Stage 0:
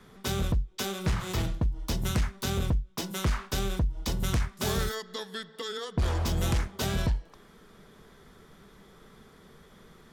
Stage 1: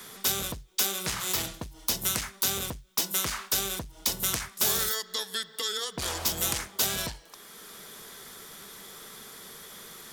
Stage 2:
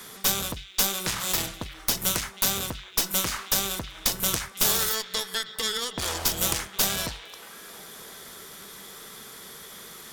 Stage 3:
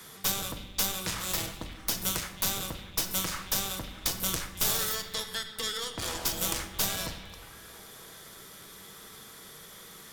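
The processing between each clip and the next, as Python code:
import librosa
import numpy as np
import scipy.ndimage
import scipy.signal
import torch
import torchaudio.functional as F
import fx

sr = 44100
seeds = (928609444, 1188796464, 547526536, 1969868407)

y1 = fx.riaa(x, sr, side='recording')
y1 = fx.band_squash(y1, sr, depth_pct=40)
y2 = fx.echo_stepped(y1, sr, ms=316, hz=2700.0, octaves=-0.7, feedback_pct=70, wet_db=-10.5)
y2 = fx.cheby_harmonics(y2, sr, harmonics=(8,), levels_db=(-17,), full_scale_db=-5.0)
y2 = F.gain(torch.from_numpy(y2), 2.0).numpy()
y3 = fx.octave_divider(y2, sr, octaves=1, level_db=-4.0)
y3 = fx.room_shoebox(y3, sr, seeds[0], volume_m3=660.0, walls='mixed', distance_m=0.64)
y3 = F.gain(torch.from_numpy(y3), -5.5).numpy()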